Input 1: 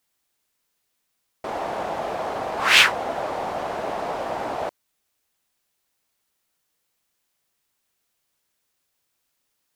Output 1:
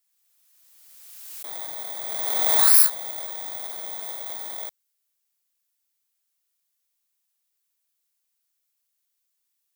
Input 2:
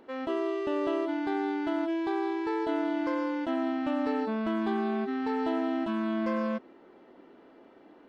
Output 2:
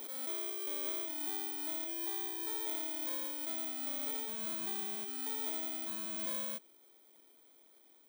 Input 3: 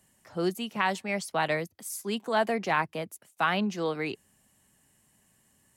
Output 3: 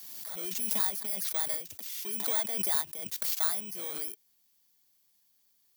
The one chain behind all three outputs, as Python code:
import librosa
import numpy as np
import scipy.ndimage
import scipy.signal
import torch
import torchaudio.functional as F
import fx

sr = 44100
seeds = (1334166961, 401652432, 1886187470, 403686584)

y = fx.bit_reversed(x, sr, seeds[0], block=16)
y = fx.tilt_eq(y, sr, slope=3.5)
y = fx.pre_swell(y, sr, db_per_s=27.0)
y = F.gain(torch.from_numpy(y), -14.0).numpy()